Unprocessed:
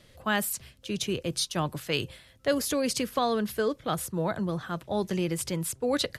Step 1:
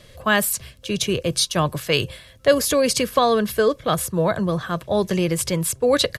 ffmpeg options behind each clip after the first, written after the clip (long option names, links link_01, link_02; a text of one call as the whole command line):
ffmpeg -i in.wav -af "aecho=1:1:1.8:0.32,volume=8.5dB" out.wav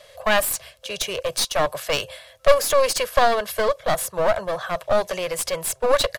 ffmpeg -i in.wav -af "lowshelf=frequency=410:width_type=q:width=3:gain=-14,aeval=exprs='clip(val(0),-1,0.0631)':channel_layout=same" out.wav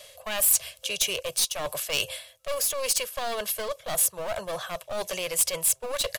ffmpeg -i in.wav -af "areverse,acompressor=threshold=-27dB:ratio=4,areverse,aexciter=amount=2.9:drive=2.6:freq=2400,volume=-2.5dB" out.wav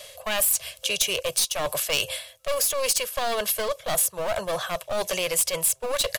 ffmpeg -i in.wav -af "acompressor=threshold=-24dB:ratio=6,volume=5dB" out.wav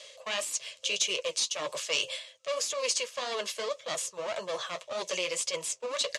ffmpeg -i in.wav -af "flanger=delay=5.6:depth=7.3:regen=-42:speed=1.8:shape=triangular,highpass=290,equalizer=frequency=740:width_type=q:width=4:gain=-10,equalizer=frequency=1500:width_type=q:width=4:gain=-6,equalizer=frequency=6700:width_type=q:width=4:gain=3,lowpass=frequency=7200:width=0.5412,lowpass=frequency=7200:width=1.3066" out.wav